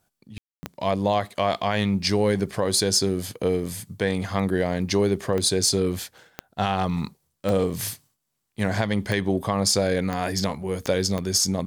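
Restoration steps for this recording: de-click; room tone fill 0.38–0.63 s

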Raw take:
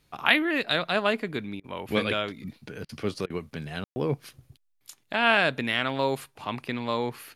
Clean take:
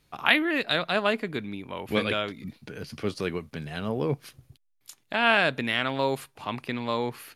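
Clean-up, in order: room tone fill 3.84–3.96 s; interpolate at 1.60/2.85/3.26/3.91 s, 39 ms

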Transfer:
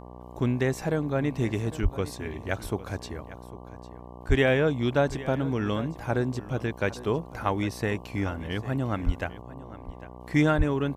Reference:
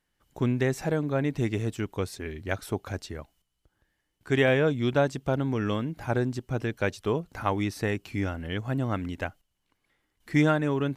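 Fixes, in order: de-hum 61.1 Hz, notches 19; de-plosive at 1.82/4.28/9.05/10.57 s; inverse comb 802 ms -16.5 dB

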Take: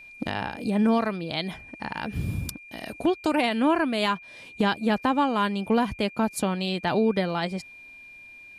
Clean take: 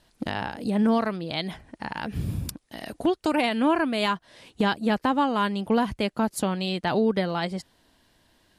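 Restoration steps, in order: band-stop 2.4 kHz, Q 30

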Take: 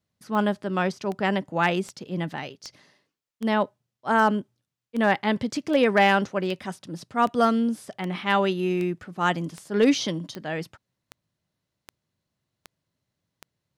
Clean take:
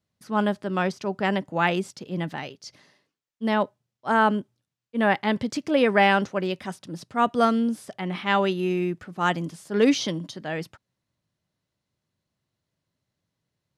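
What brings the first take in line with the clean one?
clip repair -10.5 dBFS; de-click

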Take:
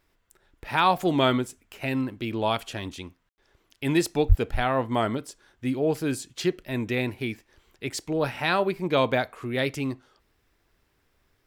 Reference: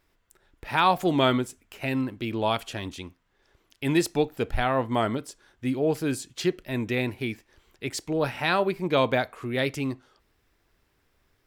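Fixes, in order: 4.28–4.40 s: high-pass 140 Hz 24 dB/octave; room tone fill 3.29–3.38 s

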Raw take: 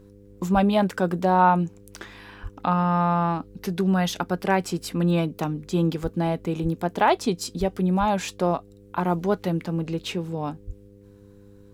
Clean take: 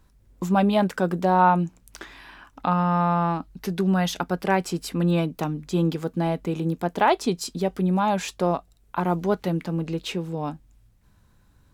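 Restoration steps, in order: de-hum 100.9 Hz, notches 5; de-plosive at 0.53/2.42/6.02/6.62/7.59/7.99/10.66 s

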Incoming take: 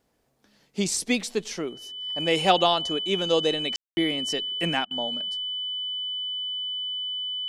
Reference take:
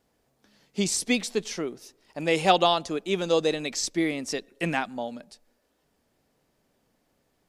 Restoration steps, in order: band-stop 3 kHz, Q 30; room tone fill 3.76–3.97 s; interpolate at 4.85 s, 57 ms

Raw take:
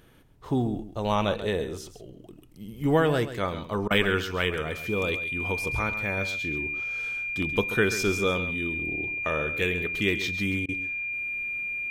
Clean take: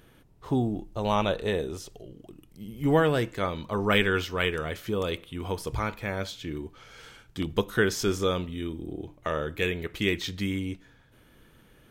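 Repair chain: band-stop 2.4 kHz, Q 30; interpolate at 3.88/10.66 s, 25 ms; inverse comb 134 ms -12 dB

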